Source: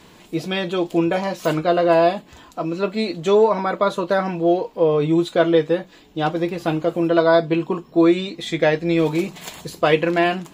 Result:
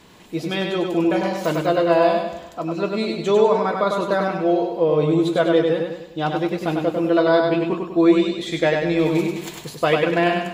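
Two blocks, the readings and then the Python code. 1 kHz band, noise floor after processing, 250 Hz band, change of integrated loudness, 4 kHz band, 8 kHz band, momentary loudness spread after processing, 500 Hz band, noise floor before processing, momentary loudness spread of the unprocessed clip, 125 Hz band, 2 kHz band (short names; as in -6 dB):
-0.5 dB, -40 dBFS, 0.0 dB, -0.5 dB, -0.5 dB, n/a, 9 LU, -0.5 dB, -48 dBFS, 10 LU, -0.5 dB, -0.5 dB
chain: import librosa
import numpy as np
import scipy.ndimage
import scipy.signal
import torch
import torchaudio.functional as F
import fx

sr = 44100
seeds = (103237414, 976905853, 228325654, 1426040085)

y = fx.echo_feedback(x, sr, ms=99, feedback_pct=45, wet_db=-4)
y = y * 10.0 ** (-2.0 / 20.0)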